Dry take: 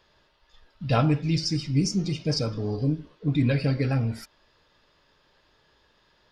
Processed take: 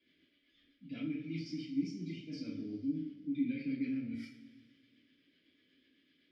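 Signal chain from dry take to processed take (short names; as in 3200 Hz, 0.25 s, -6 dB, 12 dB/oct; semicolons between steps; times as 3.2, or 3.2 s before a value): reverse; compressor 6:1, threshold -32 dBFS, peak gain reduction 14 dB; reverse; rotary speaker horn 8 Hz; vowel filter i; two-slope reverb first 0.42 s, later 2.1 s, from -18 dB, DRR -9 dB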